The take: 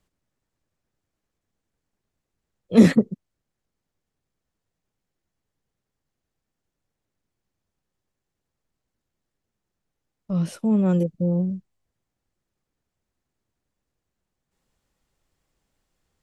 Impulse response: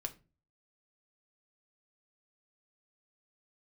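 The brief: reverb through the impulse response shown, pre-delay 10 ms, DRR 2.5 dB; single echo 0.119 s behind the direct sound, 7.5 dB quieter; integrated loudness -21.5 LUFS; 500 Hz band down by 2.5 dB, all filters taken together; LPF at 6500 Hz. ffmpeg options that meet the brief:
-filter_complex "[0:a]lowpass=6.5k,equalizer=f=500:t=o:g=-3,aecho=1:1:119:0.422,asplit=2[a][b];[1:a]atrim=start_sample=2205,adelay=10[c];[b][c]afir=irnorm=-1:irlink=0,volume=-1dB[d];[a][d]amix=inputs=2:normalize=0,volume=-3dB"

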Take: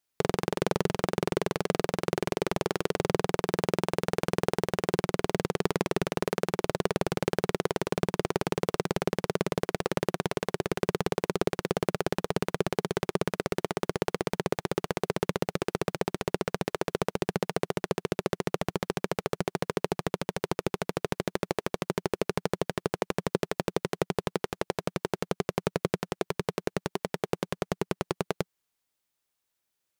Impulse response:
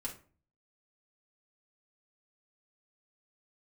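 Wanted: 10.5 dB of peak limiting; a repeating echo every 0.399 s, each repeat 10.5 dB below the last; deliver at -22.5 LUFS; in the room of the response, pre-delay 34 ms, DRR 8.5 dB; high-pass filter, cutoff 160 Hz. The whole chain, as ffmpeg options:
-filter_complex "[0:a]highpass=160,alimiter=limit=-19.5dB:level=0:latency=1,aecho=1:1:399|798|1197:0.299|0.0896|0.0269,asplit=2[a][b];[1:a]atrim=start_sample=2205,adelay=34[c];[b][c]afir=irnorm=-1:irlink=0,volume=-7.5dB[d];[a][d]amix=inputs=2:normalize=0,volume=16.5dB"

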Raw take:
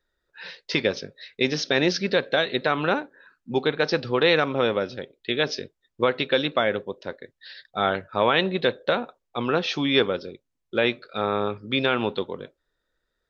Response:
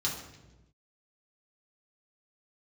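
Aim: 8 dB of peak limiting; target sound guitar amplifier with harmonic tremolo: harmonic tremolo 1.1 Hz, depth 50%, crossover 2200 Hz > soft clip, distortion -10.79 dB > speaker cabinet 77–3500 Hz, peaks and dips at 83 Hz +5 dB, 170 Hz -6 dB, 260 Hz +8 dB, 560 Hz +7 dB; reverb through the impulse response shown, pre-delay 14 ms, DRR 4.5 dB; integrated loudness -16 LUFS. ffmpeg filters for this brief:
-filter_complex "[0:a]alimiter=limit=-14dB:level=0:latency=1,asplit=2[a][b];[1:a]atrim=start_sample=2205,adelay=14[c];[b][c]afir=irnorm=-1:irlink=0,volume=-10dB[d];[a][d]amix=inputs=2:normalize=0,acrossover=split=2200[e][f];[e]aeval=exprs='val(0)*(1-0.5/2+0.5/2*cos(2*PI*1.1*n/s))':c=same[g];[f]aeval=exprs='val(0)*(1-0.5/2-0.5/2*cos(2*PI*1.1*n/s))':c=same[h];[g][h]amix=inputs=2:normalize=0,asoftclip=threshold=-23.5dB,highpass=77,equalizer=f=83:t=q:w=4:g=5,equalizer=f=170:t=q:w=4:g=-6,equalizer=f=260:t=q:w=4:g=8,equalizer=f=560:t=q:w=4:g=7,lowpass=f=3.5k:w=0.5412,lowpass=f=3.5k:w=1.3066,volume=13dB"

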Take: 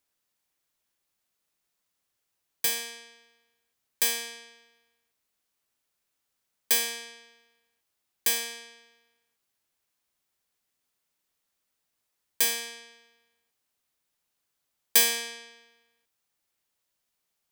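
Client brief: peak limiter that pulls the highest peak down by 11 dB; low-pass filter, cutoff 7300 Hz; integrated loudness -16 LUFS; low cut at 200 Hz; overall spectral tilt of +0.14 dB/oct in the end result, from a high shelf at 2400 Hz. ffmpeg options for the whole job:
-af "highpass=200,lowpass=7.3k,highshelf=f=2.4k:g=-3,volume=20.5dB,alimiter=limit=-3dB:level=0:latency=1"

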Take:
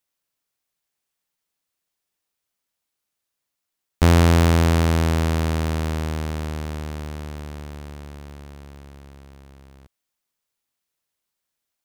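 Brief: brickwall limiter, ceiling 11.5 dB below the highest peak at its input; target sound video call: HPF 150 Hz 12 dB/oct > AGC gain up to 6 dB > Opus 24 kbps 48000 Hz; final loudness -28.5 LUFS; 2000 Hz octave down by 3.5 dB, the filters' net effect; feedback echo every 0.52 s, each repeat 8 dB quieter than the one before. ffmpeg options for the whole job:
-af "equalizer=f=2k:t=o:g=-4.5,alimiter=limit=-19dB:level=0:latency=1,highpass=150,aecho=1:1:520|1040|1560|2080|2600:0.398|0.159|0.0637|0.0255|0.0102,dynaudnorm=m=6dB,volume=3dB" -ar 48000 -c:a libopus -b:a 24k

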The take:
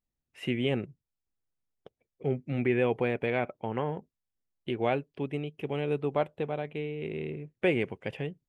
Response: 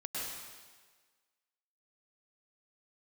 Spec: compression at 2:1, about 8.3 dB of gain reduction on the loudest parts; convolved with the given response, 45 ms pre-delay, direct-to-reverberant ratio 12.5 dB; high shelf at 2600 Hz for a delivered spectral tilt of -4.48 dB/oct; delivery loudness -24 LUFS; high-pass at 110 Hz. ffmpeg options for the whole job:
-filter_complex "[0:a]highpass=110,highshelf=f=2.6k:g=7.5,acompressor=threshold=-36dB:ratio=2,asplit=2[a][b];[1:a]atrim=start_sample=2205,adelay=45[c];[b][c]afir=irnorm=-1:irlink=0,volume=-15dB[d];[a][d]amix=inputs=2:normalize=0,volume=13.5dB"

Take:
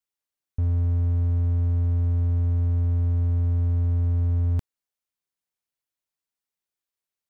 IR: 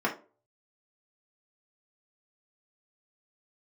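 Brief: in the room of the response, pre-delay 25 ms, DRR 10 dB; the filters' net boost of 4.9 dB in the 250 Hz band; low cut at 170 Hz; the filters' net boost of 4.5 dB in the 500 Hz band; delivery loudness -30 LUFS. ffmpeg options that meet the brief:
-filter_complex "[0:a]highpass=170,equalizer=f=250:t=o:g=5,equalizer=f=500:t=o:g=4,asplit=2[a][b];[1:a]atrim=start_sample=2205,adelay=25[c];[b][c]afir=irnorm=-1:irlink=0,volume=-20.5dB[d];[a][d]amix=inputs=2:normalize=0,volume=2dB"

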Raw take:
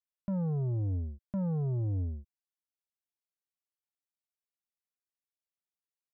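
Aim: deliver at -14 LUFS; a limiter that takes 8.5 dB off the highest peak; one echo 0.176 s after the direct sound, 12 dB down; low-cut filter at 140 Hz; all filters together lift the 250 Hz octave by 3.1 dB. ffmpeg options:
-af "highpass=140,equalizer=f=250:t=o:g=8,alimiter=level_in=6dB:limit=-24dB:level=0:latency=1,volume=-6dB,aecho=1:1:176:0.251,volume=22.5dB"

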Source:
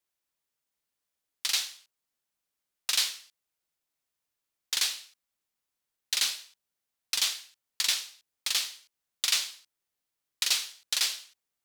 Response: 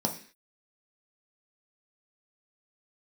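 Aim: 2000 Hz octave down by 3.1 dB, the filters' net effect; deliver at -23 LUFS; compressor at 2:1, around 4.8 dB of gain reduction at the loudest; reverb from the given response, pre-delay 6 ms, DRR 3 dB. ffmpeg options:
-filter_complex "[0:a]equalizer=f=2k:t=o:g=-4,acompressor=threshold=-32dB:ratio=2,asplit=2[a][b];[1:a]atrim=start_sample=2205,adelay=6[c];[b][c]afir=irnorm=-1:irlink=0,volume=-10dB[d];[a][d]amix=inputs=2:normalize=0,volume=9.5dB"

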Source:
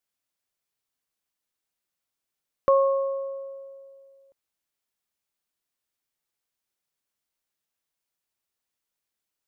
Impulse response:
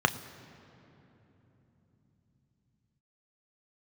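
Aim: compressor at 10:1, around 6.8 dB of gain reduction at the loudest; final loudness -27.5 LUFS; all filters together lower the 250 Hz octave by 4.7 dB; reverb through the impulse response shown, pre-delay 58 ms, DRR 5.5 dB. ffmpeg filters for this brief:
-filter_complex "[0:a]equalizer=f=250:t=o:g=-7,acompressor=threshold=-23dB:ratio=10,asplit=2[a][b];[1:a]atrim=start_sample=2205,adelay=58[c];[b][c]afir=irnorm=-1:irlink=0,volume=-18.5dB[d];[a][d]amix=inputs=2:normalize=0,volume=5.5dB"

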